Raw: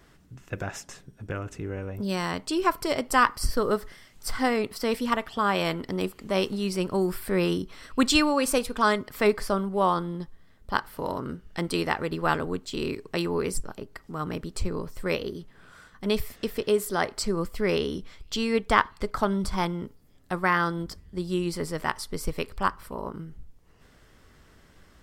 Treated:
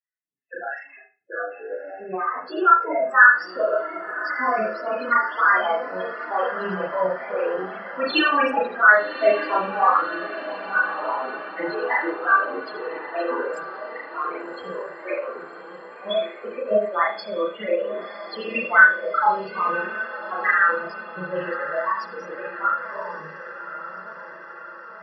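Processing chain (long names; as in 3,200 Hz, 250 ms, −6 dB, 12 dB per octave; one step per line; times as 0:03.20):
high-pass filter 400 Hz 12 dB per octave
noise gate −47 dBFS, range −39 dB
low-pass filter 4,900 Hz 12 dB per octave
parametric band 1,800 Hz +9 dB 2.4 octaves
spectral peaks only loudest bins 8
formants moved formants +5 semitones
feedback delay with all-pass diffusion 1,127 ms, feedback 62%, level −12 dB
flanger 0.49 Hz, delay 2.2 ms, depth 5.7 ms, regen +41%
convolution reverb, pre-delay 32 ms, DRR −4 dB
every ending faded ahead of time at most 220 dB per second
level +3 dB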